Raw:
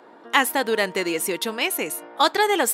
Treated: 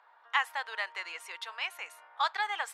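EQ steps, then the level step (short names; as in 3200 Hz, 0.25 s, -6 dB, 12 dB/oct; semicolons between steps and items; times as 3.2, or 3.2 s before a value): HPF 920 Hz 24 dB/oct; tape spacing loss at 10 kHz 21 dB; -5.0 dB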